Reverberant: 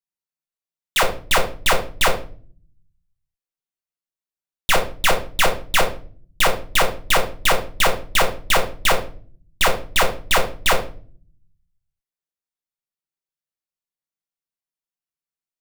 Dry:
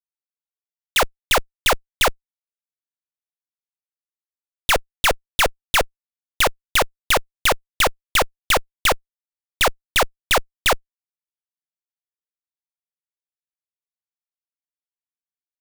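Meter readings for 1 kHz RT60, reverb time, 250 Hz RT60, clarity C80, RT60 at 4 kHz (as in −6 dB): 0.35 s, 0.45 s, 0.90 s, 15.5 dB, 0.35 s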